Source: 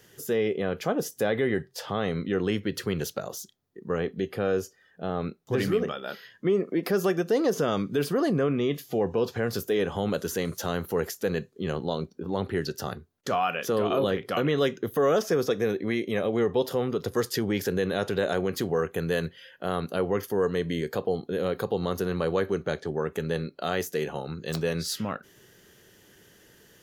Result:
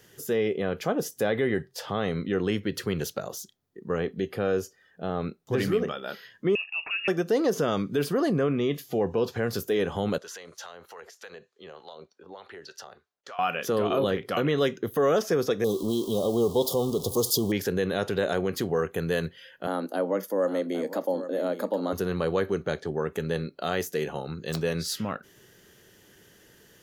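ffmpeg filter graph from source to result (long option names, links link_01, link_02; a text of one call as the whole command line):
ffmpeg -i in.wav -filter_complex "[0:a]asettb=1/sr,asplit=3[link_01][link_02][link_03];[link_01]atrim=end=6.554[link_04];[link_02]atrim=start=6.55:end=7.08,asetpts=PTS-STARTPTS,afade=type=in:duration=0.004:curve=qsin,afade=type=out:start_time=0.526:duration=0.004:curve=qsin,acompressor=threshold=-37dB:ratio=1.5:attack=3.2:release=140:knee=1:detection=peak,lowpass=frequency=2600:width_type=q:width=0.5098,lowpass=frequency=2600:width_type=q:width=0.6013,lowpass=frequency=2600:width_type=q:width=0.9,lowpass=frequency=2600:width_type=q:width=2.563,afreqshift=-3000[link_05];[link_03]atrim=start=7.076[link_06];[link_04][link_05]acrossfade=duration=0.004:curve1=hsin:curve2=qsin[link_07];[link_07][link_06]acrossfade=duration=0.004:curve1=qsin:curve2=hsin,asettb=1/sr,asplit=3[link_08][link_09][link_10];[link_08]atrim=end=10.184[link_11];[link_09]atrim=start=10.18:end=13.39,asetpts=PTS-STARTPTS,afade=type=in:duration=0.004:curve=qsin,afade=type=out:start_time=3.206:duration=0.004:curve=qsin,acrossover=split=510 7500:gain=0.0794 1 0.126[link_12][link_13][link_14];[link_12][link_13][link_14]amix=inputs=3:normalize=0,acompressor=threshold=-35dB:ratio=6:attack=3.2:release=140:knee=1:detection=peak,acrossover=split=720[link_15][link_16];[link_15]aeval=exprs='val(0)*(1-0.7/2+0.7/2*cos(2*PI*3.3*n/s))':channel_layout=same[link_17];[link_16]aeval=exprs='val(0)*(1-0.7/2-0.7/2*cos(2*PI*3.3*n/s))':channel_layout=same[link_18];[link_17][link_18]amix=inputs=2:normalize=0[link_19];[link_10]atrim=start=13.386[link_20];[link_11][link_19]acrossfade=duration=0.004:curve1=hsin:curve2=qsin[link_21];[link_21][link_20]acrossfade=duration=0.004:curve1=qsin:curve2=hsin,asettb=1/sr,asplit=3[link_22][link_23][link_24];[link_22]atrim=end=15.644[link_25];[link_23]atrim=start=15.64:end=17.52,asetpts=PTS-STARTPTS,afade=type=in:duration=0.004:curve=qsin,afade=type=out:start_time=1.876:duration=0.004:curve=qsin,aeval=exprs='val(0)+0.5*0.0158*sgn(val(0))':channel_layout=same,asuperstop=centerf=1900:order=12:qfactor=0.95,highshelf=frequency=5100:gain=10[link_26];[link_24]atrim=start=17.516[link_27];[link_25][link_26]acrossfade=duration=0.004:curve1=hsin:curve2=qsin[link_28];[link_28][link_27]acrossfade=duration=0.004:curve1=qsin:curve2=hsin,asettb=1/sr,asplit=3[link_29][link_30][link_31];[link_29]atrim=end=19.674[link_32];[link_30]atrim=start=19.67:end=21.93,asetpts=PTS-STARTPTS,afade=type=in:duration=0.004:curve=qsin,afade=type=out:start_time=2.256:duration=0.004:curve=qsin,equalizer=frequency=2600:width_type=o:width=1.5:gain=-7.5,aecho=1:1:807:0.251,atrim=end_sample=99666,afreqshift=90[link_33];[link_31]atrim=start=21.926[link_34];[link_32][link_33]acrossfade=duration=0.004:curve1=hsin:curve2=qsin[link_35];[link_35][link_34]acrossfade=duration=0.004:curve1=qsin:curve2=hsin" out.wav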